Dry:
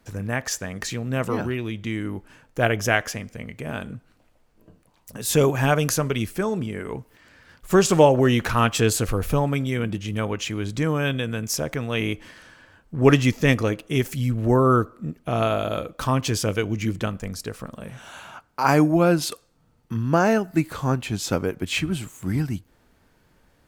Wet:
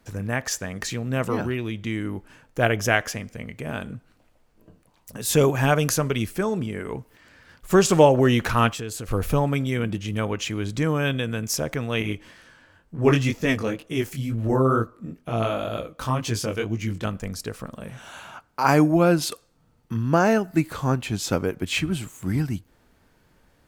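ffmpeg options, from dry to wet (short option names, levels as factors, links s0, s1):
-filter_complex "[0:a]asettb=1/sr,asplit=3[s0][s1][s2];[s0]atrim=end=8.714[s3];[s1]atrim=start=8.71:end=9.11,asetpts=PTS-STARTPTS,afade=t=in:d=0.004:c=qsin,afade=t=out:st=0.396:d=0.004:c=qsin,acompressor=threshold=0.02:ratio=2.5:attack=3.2:release=140:knee=1:detection=peak[s4];[s2]atrim=start=9.106[s5];[s3][s4]acrossfade=d=0.004:c1=hsin:c2=qsin[s6];[s6][s5]acrossfade=d=0.004:c1=qsin:c2=hsin,asettb=1/sr,asplit=3[s7][s8][s9];[s7]atrim=end=12.024[s10];[s8]atrim=start=12.02:end=17.05,asetpts=PTS-STARTPTS,afade=t=in:d=0.004:c=qsin,afade=t=out:st=5.026:d=0.004:c=qsin,flanger=delay=17:depth=6:speed=2.1[s11];[s9]atrim=start=17.046[s12];[s10][s11]acrossfade=d=0.004:c1=hsin:c2=qsin[s13];[s13][s12]acrossfade=d=0.004:c1=qsin:c2=hsin"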